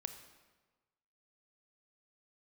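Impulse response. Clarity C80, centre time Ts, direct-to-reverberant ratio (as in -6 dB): 11.0 dB, 16 ms, 8.0 dB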